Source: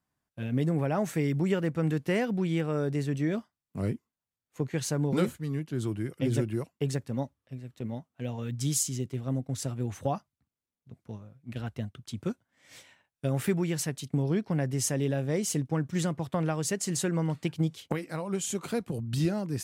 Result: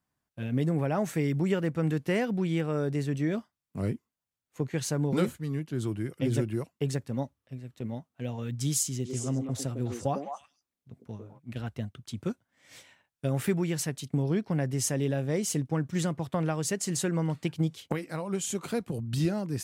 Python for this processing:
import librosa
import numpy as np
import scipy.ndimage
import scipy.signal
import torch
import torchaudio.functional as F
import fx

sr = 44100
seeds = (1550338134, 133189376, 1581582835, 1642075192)

y = fx.echo_stepped(x, sr, ms=102, hz=360.0, octaves=1.4, feedback_pct=70, wet_db=-1, at=(9.04, 11.38), fade=0.02)